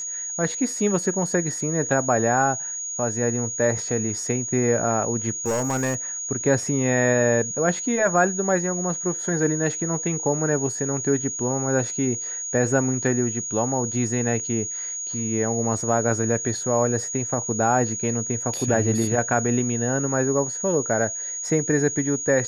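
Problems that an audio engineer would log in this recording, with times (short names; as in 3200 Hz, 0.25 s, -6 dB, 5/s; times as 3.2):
tone 6700 Hz -28 dBFS
5.46–5.96 clipped -19.5 dBFS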